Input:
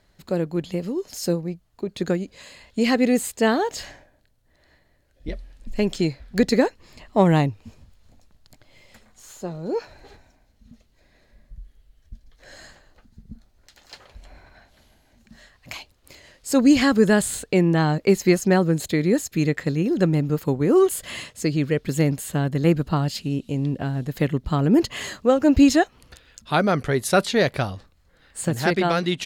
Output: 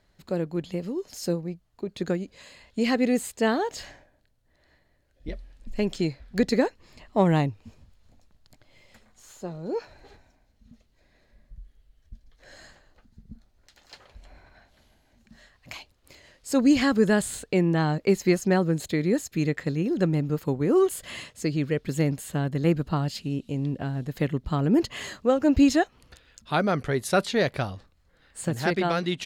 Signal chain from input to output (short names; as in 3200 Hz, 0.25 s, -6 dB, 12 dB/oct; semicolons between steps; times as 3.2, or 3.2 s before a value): high shelf 8000 Hz -4 dB; gain -4 dB